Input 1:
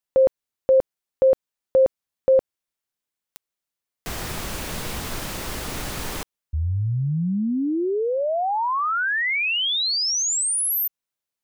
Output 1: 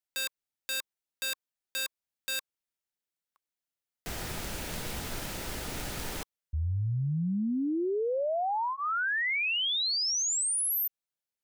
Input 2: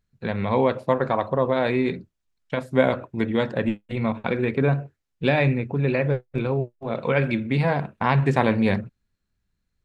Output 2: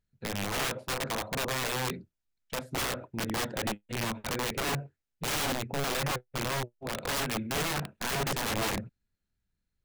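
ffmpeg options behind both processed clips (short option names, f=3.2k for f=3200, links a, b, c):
-af "bandreject=f=1.1k:w=8.4,aeval=exprs='(mod(8.91*val(0)+1,2)-1)/8.91':c=same,volume=-6.5dB"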